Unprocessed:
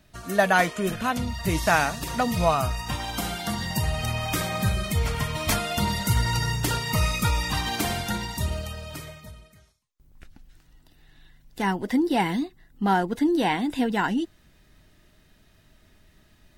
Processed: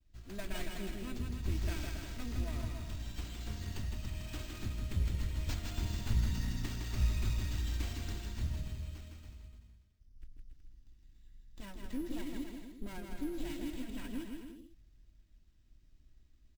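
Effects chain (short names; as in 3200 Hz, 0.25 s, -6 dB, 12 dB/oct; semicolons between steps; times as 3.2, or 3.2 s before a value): minimum comb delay 3.1 ms; expander -57 dBFS; passive tone stack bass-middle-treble 10-0-1; 2.42–4.9 compressor, threshold -38 dBFS, peak gain reduction 7 dB; bouncing-ball echo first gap 0.16 s, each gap 0.75×, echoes 5; careless resampling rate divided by 4×, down none, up hold; gain +3.5 dB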